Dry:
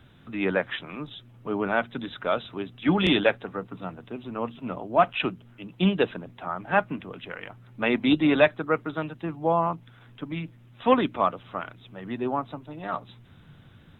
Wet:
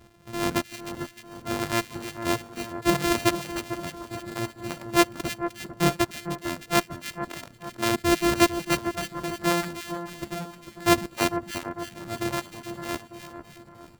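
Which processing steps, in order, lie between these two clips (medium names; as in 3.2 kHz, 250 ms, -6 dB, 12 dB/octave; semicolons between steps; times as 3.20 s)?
sorted samples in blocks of 128 samples; reverb removal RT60 1.3 s; two-band feedback delay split 1.7 kHz, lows 449 ms, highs 307 ms, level -9.5 dB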